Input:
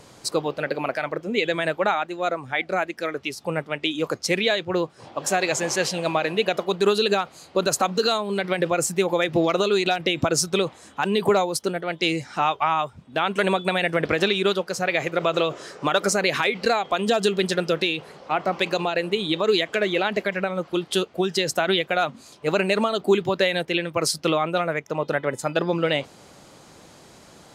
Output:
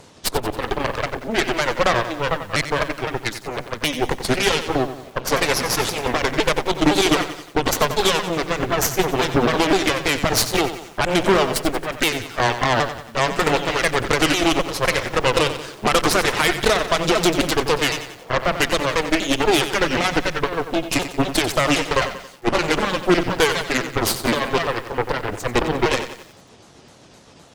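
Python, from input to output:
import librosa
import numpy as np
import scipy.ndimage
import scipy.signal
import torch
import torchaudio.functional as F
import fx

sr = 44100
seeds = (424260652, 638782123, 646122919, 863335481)

y = fx.pitch_ramps(x, sr, semitones=-6.0, every_ms=256)
y = fx.cheby_harmonics(y, sr, harmonics=(8,), levels_db=(-11,), full_scale_db=-8.0)
y = fx.echo_crushed(y, sr, ms=91, feedback_pct=55, bits=7, wet_db=-10.5)
y = y * librosa.db_to_amplitude(2.0)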